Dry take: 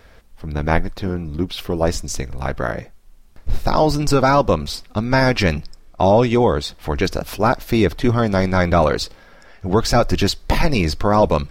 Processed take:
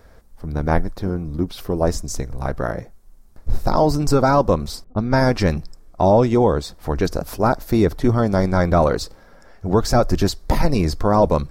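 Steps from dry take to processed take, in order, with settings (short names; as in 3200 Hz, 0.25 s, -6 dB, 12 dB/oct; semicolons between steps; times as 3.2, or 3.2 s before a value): 4.84–5.56 low-pass opened by the level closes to 470 Hz, open at -13 dBFS; bell 2800 Hz -11.5 dB 1.3 oct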